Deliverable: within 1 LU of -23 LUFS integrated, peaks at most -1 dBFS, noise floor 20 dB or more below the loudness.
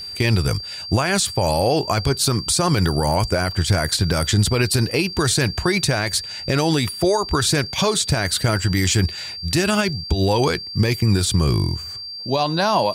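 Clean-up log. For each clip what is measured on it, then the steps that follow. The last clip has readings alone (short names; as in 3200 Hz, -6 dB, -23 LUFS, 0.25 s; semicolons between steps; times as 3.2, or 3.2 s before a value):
steady tone 4700 Hz; tone level -30 dBFS; loudness -19.5 LUFS; peak -7.5 dBFS; loudness target -23.0 LUFS
-> notch 4700 Hz, Q 30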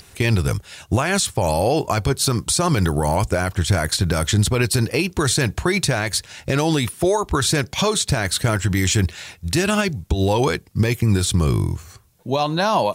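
steady tone none; loudness -20.0 LUFS; peak -7.0 dBFS; loudness target -23.0 LUFS
-> gain -3 dB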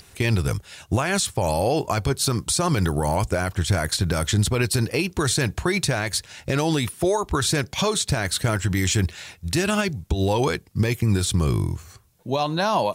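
loudness -23.0 LUFS; peak -10.0 dBFS; noise floor -54 dBFS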